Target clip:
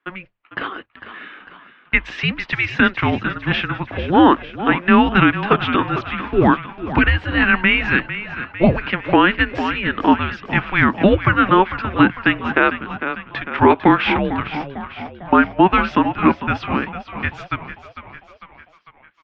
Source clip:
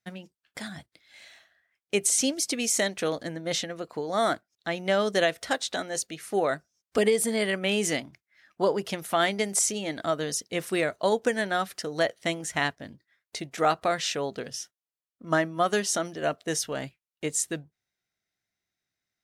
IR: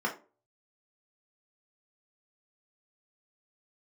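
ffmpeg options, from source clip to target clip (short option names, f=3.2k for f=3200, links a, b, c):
-filter_complex "[0:a]bandreject=f=60:t=h:w=6,bandreject=f=120:t=h:w=6,bandreject=f=180:t=h:w=6,bandreject=f=240:t=h:w=6,bandreject=f=300:t=h:w=6,bandreject=f=360:t=h:w=6,bandreject=f=420:t=h:w=6,bandreject=f=480:t=h:w=6,asplit=7[a][b][c][d][e][f][g];[b]adelay=450,afreqshift=-51,volume=-12dB[h];[c]adelay=900,afreqshift=-102,volume=-16.9dB[i];[d]adelay=1350,afreqshift=-153,volume=-21.8dB[j];[e]adelay=1800,afreqshift=-204,volume=-26.6dB[k];[f]adelay=2250,afreqshift=-255,volume=-31.5dB[l];[g]adelay=2700,afreqshift=-306,volume=-36.4dB[m];[a][h][i][j][k][l][m]amix=inputs=7:normalize=0,highpass=f=600:t=q:w=0.5412,highpass=f=600:t=q:w=1.307,lowpass=f=3.1k:t=q:w=0.5176,lowpass=f=3.1k:t=q:w=0.7071,lowpass=f=3.1k:t=q:w=1.932,afreqshift=-370,alimiter=level_in=17dB:limit=-1dB:release=50:level=0:latency=1,volume=-1dB"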